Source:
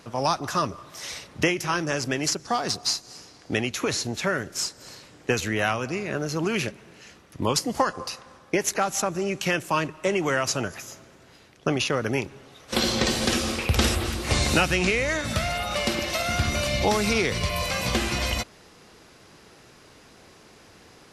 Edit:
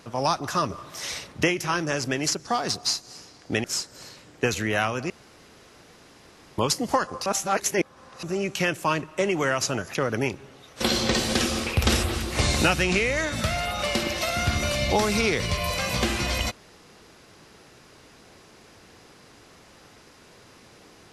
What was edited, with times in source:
0.7–1.32 gain +3 dB
3.64–4.5 cut
5.96–7.44 room tone
8.12–9.09 reverse
10.81–11.87 cut

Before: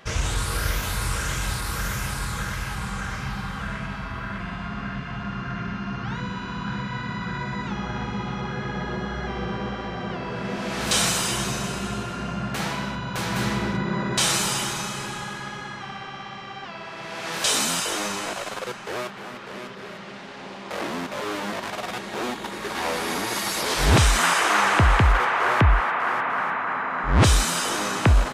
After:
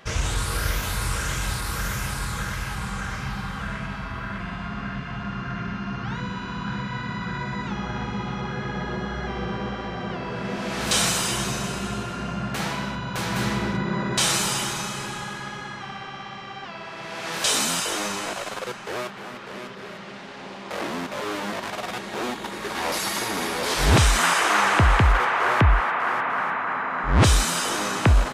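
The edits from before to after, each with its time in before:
22.92–23.63 reverse

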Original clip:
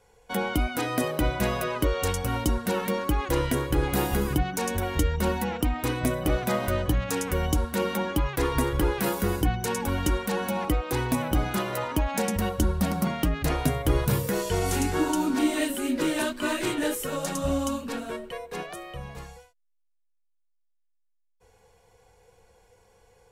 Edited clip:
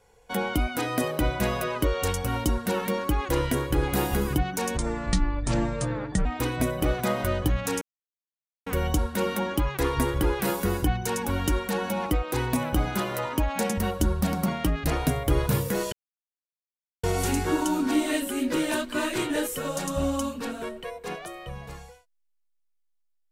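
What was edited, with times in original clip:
4.77–5.69 speed 62%
7.25 insert silence 0.85 s
14.51 insert silence 1.11 s

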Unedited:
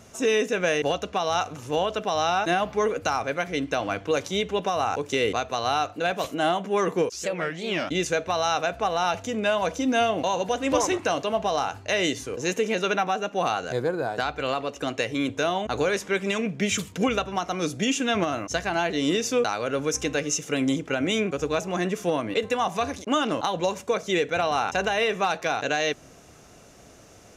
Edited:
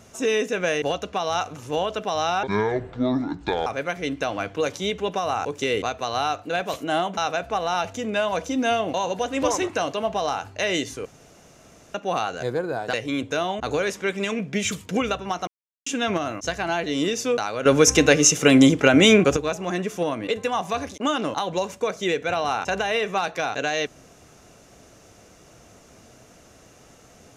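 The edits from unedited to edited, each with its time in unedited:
2.43–3.17 speed 60%
6.68–8.47 cut
12.35–13.24 room tone
14.23–15 cut
17.54–17.93 mute
19.72–21.43 gain +10.5 dB

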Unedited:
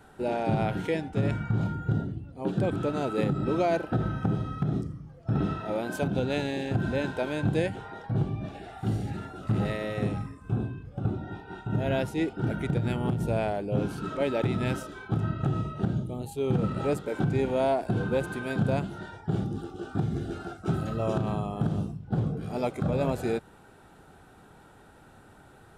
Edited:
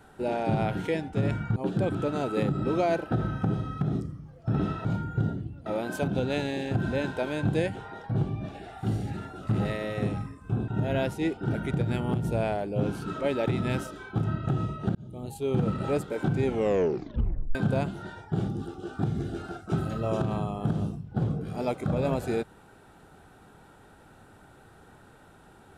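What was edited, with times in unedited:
1.56–2.37 move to 5.66
10.68–11.64 cut
15.91–16.28 fade in
17.41 tape stop 1.10 s

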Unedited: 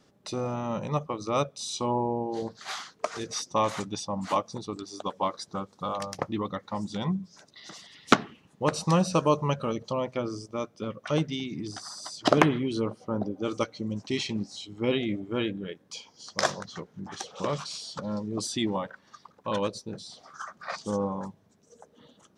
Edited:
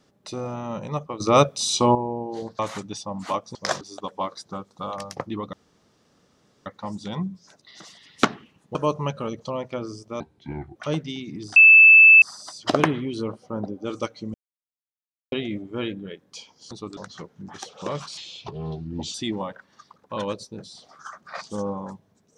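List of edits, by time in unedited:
1.2–1.95 gain +10.5 dB
2.59–3.61 cut
4.57–4.83 swap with 16.29–16.55
6.55 insert room tone 1.13 s
8.64–9.18 cut
10.63–11 speed 66%
11.8 add tone 2630 Hz -7 dBFS 0.66 s
13.92–14.9 mute
17.75–18.49 speed 76%

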